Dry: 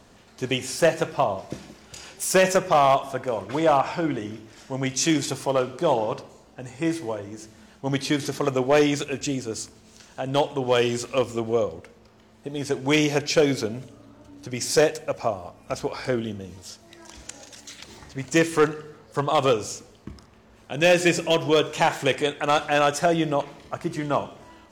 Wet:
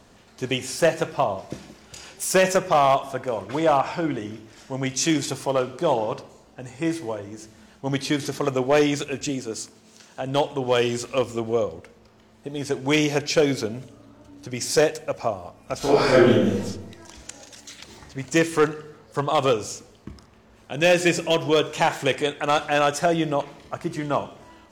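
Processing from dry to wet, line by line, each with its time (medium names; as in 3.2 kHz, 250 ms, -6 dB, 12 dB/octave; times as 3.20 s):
9.29–10.21 s: high-pass 130 Hz
15.78–16.60 s: reverb throw, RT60 0.96 s, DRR -12 dB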